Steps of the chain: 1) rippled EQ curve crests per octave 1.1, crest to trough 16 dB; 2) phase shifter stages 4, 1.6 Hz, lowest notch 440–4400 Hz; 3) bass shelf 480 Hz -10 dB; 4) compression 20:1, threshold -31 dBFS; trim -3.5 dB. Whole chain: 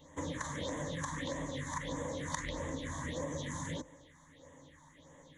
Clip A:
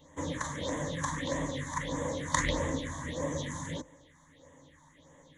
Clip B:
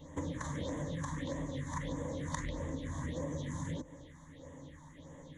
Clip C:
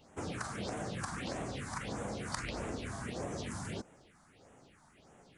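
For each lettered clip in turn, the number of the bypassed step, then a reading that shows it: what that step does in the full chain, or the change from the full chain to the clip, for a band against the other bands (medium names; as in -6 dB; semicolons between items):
4, mean gain reduction 3.5 dB; 3, 125 Hz band +7.0 dB; 1, momentary loudness spread change -17 LU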